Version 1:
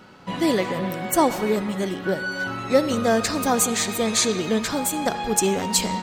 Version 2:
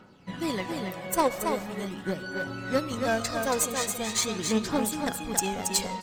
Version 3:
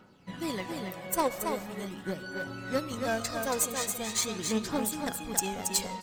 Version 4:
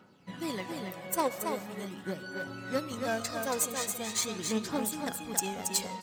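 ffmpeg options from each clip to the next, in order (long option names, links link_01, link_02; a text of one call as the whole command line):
ffmpeg -i in.wav -af "aphaser=in_gain=1:out_gain=1:delay=2:decay=0.51:speed=0.42:type=triangular,aeval=exprs='0.708*(cos(1*acos(clip(val(0)/0.708,-1,1)))-cos(1*PI/2))+0.141*(cos(3*acos(clip(val(0)/0.708,-1,1)))-cos(3*PI/2))+0.0447*(cos(5*acos(clip(val(0)/0.708,-1,1)))-cos(5*PI/2))+0.0316*(cos(7*acos(clip(val(0)/0.708,-1,1)))-cos(7*PI/2))':channel_layout=same,aecho=1:1:277:0.531,volume=-2.5dB" out.wav
ffmpeg -i in.wav -af "highshelf=frequency=9400:gain=6,volume=-4dB" out.wav
ffmpeg -i in.wav -af "highpass=93,volume=-1.5dB" out.wav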